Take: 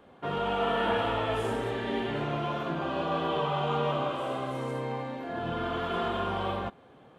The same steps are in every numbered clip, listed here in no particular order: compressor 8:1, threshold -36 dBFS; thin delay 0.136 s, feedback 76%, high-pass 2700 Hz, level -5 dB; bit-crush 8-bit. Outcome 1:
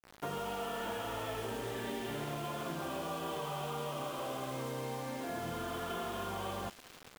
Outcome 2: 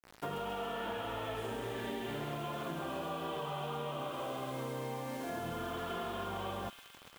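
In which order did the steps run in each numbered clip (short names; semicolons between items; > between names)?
compressor > thin delay > bit-crush; bit-crush > compressor > thin delay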